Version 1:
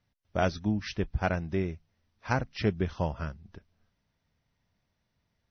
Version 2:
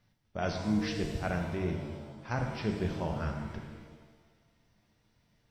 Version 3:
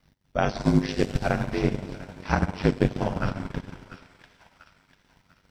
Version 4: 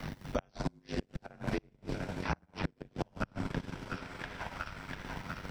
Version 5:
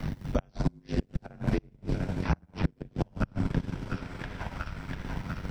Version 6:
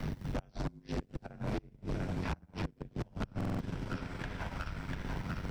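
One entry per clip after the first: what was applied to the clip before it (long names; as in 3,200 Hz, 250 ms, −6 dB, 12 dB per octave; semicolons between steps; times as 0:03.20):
reversed playback; downward compressor 4 to 1, threshold −37 dBFS, peak gain reduction 14 dB; reversed playback; reverb with rising layers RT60 1.4 s, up +7 semitones, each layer −8 dB, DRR 2.5 dB; level +4.5 dB
ring modulation 48 Hz; delay with a high-pass on its return 694 ms, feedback 38%, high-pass 1,500 Hz, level −9 dB; transient designer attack +6 dB, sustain −11 dB; level +9 dB
gate with flip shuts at −14 dBFS, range −35 dB; multiband upward and downward compressor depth 100%; level −3.5 dB
low-shelf EQ 300 Hz +11 dB
gain into a clipping stage and back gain 30 dB; buffer that repeats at 0:03.36, samples 2,048, times 4; level −1.5 dB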